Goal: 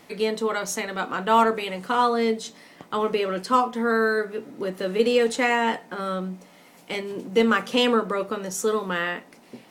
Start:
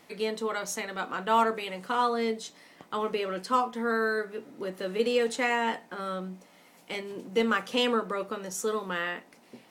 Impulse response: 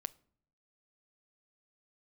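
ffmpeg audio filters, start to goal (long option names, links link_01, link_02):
-filter_complex "[0:a]asplit=2[link_01][link_02];[1:a]atrim=start_sample=2205,lowshelf=frequency=430:gain=6[link_03];[link_02][link_03]afir=irnorm=-1:irlink=0,volume=0dB[link_04];[link_01][link_04]amix=inputs=2:normalize=0"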